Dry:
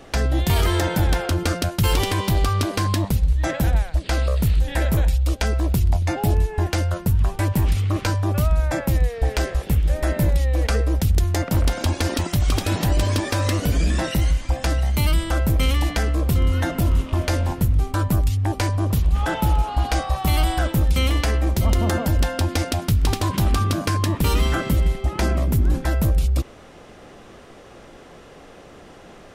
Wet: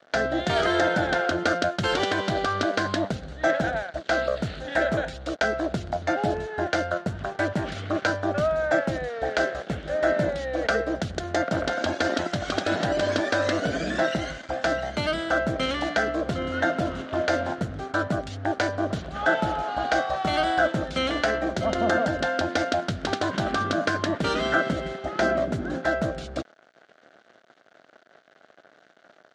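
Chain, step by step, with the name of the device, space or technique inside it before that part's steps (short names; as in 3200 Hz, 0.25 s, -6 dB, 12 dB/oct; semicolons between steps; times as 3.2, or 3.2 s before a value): blown loudspeaker (crossover distortion -40 dBFS; speaker cabinet 220–5900 Hz, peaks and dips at 650 Hz +10 dB, 980 Hz -7 dB, 1500 Hz +10 dB, 2500 Hz -6 dB, 5200 Hz -5 dB)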